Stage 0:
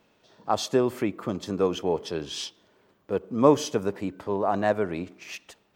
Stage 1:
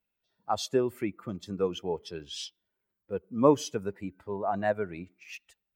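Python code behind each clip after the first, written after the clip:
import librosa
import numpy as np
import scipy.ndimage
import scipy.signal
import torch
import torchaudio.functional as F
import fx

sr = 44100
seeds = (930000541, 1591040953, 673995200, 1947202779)

y = fx.bin_expand(x, sr, power=1.5)
y = y * 10.0 ** (-2.0 / 20.0)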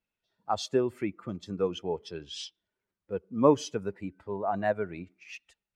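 y = scipy.signal.sosfilt(scipy.signal.bessel(2, 6800.0, 'lowpass', norm='mag', fs=sr, output='sos'), x)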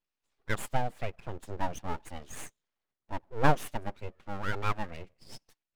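y = np.abs(x)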